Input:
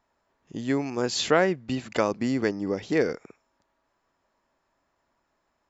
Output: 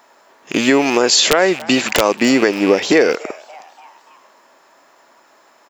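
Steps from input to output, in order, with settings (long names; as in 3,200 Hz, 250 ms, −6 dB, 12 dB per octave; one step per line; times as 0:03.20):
loose part that buzzes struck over −42 dBFS, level −33 dBFS
high-pass filter 360 Hz 12 dB per octave
high-shelf EQ 6,700 Hz +4 dB
downward compressor 3 to 1, threshold −34 dBFS, peak gain reduction 13.5 dB
wrap-around overflow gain 20.5 dB
echo with shifted repeats 288 ms, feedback 55%, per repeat +150 Hz, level −23.5 dB
boost into a limiter +24.5 dB
level −1 dB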